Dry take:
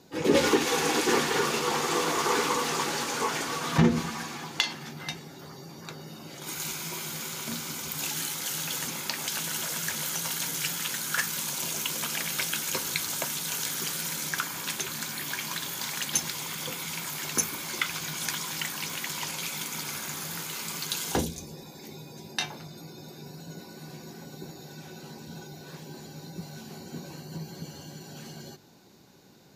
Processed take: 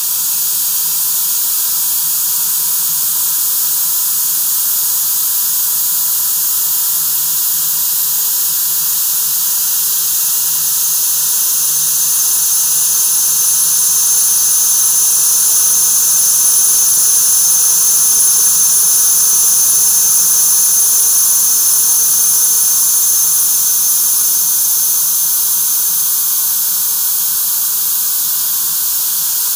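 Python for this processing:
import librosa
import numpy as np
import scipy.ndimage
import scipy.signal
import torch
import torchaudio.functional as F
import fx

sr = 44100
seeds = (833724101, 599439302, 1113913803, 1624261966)

p1 = fx.tone_stack(x, sr, knobs='10-0-10')
p2 = fx.paulstretch(p1, sr, seeds[0], factor=46.0, window_s=0.5, from_s=17.0)
p3 = fx.high_shelf(p2, sr, hz=6000.0, db=12.0)
p4 = p3 + fx.echo_multitap(p3, sr, ms=(112, 184, 344, 767), db=(-10.5, -9.0, -19.0, -9.5), dry=0)
p5 = fx.leveller(p4, sr, passes=3)
p6 = np.where(np.abs(p5) >= 10.0 ** (-23.5 / 20.0), p5, 0.0)
p7 = p5 + F.gain(torch.from_numpy(p6), -3.5).numpy()
p8 = fx.fixed_phaser(p7, sr, hz=430.0, stages=8)
y = fx.doppler_dist(p8, sr, depth_ms=0.1)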